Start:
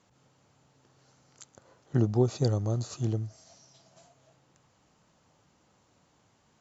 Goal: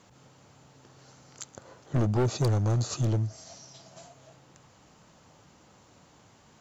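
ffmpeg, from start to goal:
-filter_complex "[0:a]asplit=2[s0][s1];[s1]acompressor=threshold=0.0158:ratio=6,volume=0.75[s2];[s0][s2]amix=inputs=2:normalize=0,asoftclip=type=hard:threshold=0.0531,volume=1.58"

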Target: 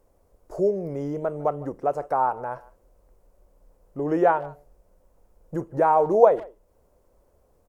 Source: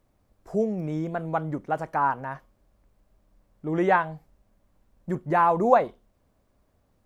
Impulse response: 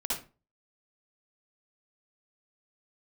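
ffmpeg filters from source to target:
-filter_complex "[0:a]equalizer=f=125:t=o:w=1:g=-7,equalizer=f=250:t=o:w=1:g=-8,equalizer=f=500:t=o:w=1:g=6,equalizer=f=2000:t=o:w=1:g=-6,equalizer=f=4000:t=o:w=1:g=-9,asplit=2[s0][s1];[s1]acompressor=threshold=0.0141:ratio=5,volume=1[s2];[s0][s2]amix=inputs=2:normalize=0,asplit=2[s3][s4];[s4]adelay=140,highpass=300,lowpass=3400,asoftclip=type=hard:threshold=0.266,volume=0.0891[s5];[s3][s5]amix=inputs=2:normalize=0,asetrate=40517,aresample=44100"

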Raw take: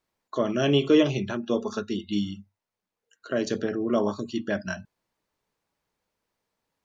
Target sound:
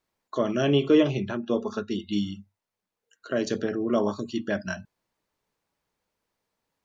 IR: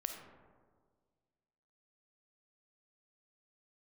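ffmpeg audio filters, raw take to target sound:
-filter_complex "[0:a]asettb=1/sr,asplit=3[s0][s1][s2];[s0]atrim=end=0.624[s3];[s1]atrim=start=0.62:end=1.91,asetpts=PTS-STARTPTS,afade=t=in:d=0.004:c=qsin,afade=t=out:st=1.286:d=0.004:c=qsin,aemphasis=mode=reproduction:type=50kf[s4];[s2]atrim=start=1.906[s5];[s3][s4]acrossfade=d=0.004:c1=hsin:c2=qsin[s6];[s6][s5]acrossfade=d=0.004:c1=qsin:c2=hsin"

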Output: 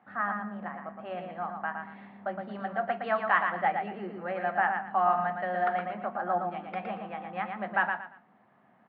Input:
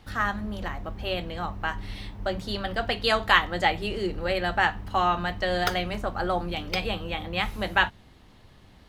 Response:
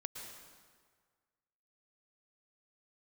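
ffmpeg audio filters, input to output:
-filter_complex "[0:a]highpass=f=180:w=0.5412,highpass=f=180:w=1.3066,equalizer=f=210:t=q:w=4:g=4,equalizer=f=310:t=q:w=4:g=-7,equalizer=f=450:t=q:w=4:g=-5,equalizer=f=720:t=q:w=4:g=9,equalizer=f=1200:t=q:w=4:g=4,equalizer=f=1700:t=q:w=4:g=3,lowpass=f=2000:w=0.5412,lowpass=f=2000:w=1.3066,asplit=2[s0][s1];[s1]aecho=0:1:115|230|345:0.531|0.138|0.0359[s2];[s0][s2]amix=inputs=2:normalize=0,volume=0.422"

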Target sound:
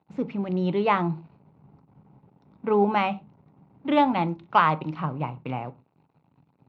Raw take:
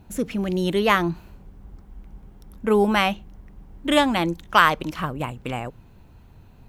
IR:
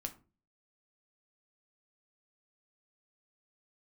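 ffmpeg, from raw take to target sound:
-filter_complex "[0:a]aeval=exprs='sgn(val(0))*max(abs(val(0))-0.00501,0)':c=same,highpass=f=100:w=0.5412,highpass=f=100:w=1.3066,equalizer=f=160:t=q:w=4:g=6,equalizer=f=870:t=q:w=4:g=7,equalizer=f=1700:t=q:w=4:g=-9,equalizer=f=3200:t=q:w=4:g=-8,lowpass=f=3600:w=0.5412,lowpass=f=3600:w=1.3066,asplit=2[s0][s1];[1:a]atrim=start_sample=2205,atrim=end_sample=6174[s2];[s1][s2]afir=irnorm=-1:irlink=0,volume=1[s3];[s0][s3]amix=inputs=2:normalize=0,volume=0.376"

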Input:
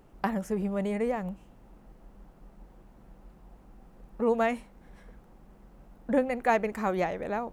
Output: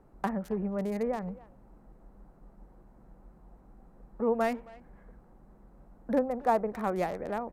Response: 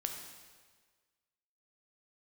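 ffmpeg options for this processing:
-filter_complex "[0:a]asplit=3[s0][s1][s2];[s0]afade=t=out:st=6.18:d=0.02[s3];[s1]highshelf=f=1500:t=q:w=1.5:g=-7.5,afade=t=in:st=6.18:d=0.02,afade=t=out:st=6.71:d=0.02[s4];[s2]afade=t=in:st=6.71:d=0.02[s5];[s3][s4][s5]amix=inputs=3:normalize=0,acrossover=split=220|2000[s6][s7][s8];[s8]acrusher=bits=4:dc=4:mix=0:aa=0.000001[s9];[s6][s7][s9]amix=inputs=3:normalize=0,asplit=2[s10][s11];[s11]adelay=270,highpass=300,lowpass=3400,asoftclip=type=hard:threshold=0.075,volume=0.1[s12];[s10][s12]amix=inputs=2:normalize=0,volume=0.794" -ar 32000 -c:a sbc -b:a 192k

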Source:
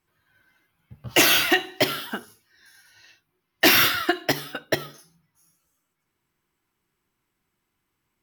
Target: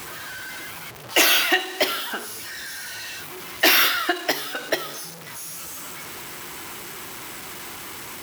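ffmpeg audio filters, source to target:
-filter_complex "[0:a]aeval=exprs='val(0)+0.5*0.0355*sgn(val(0))':c=same,highpass=53,acrossover=split=310[s0][s1];[s0]acompressor=threshold=0.00316:ratio=5[s2];[s2][s1]amix=inputs=2:normalize=0"

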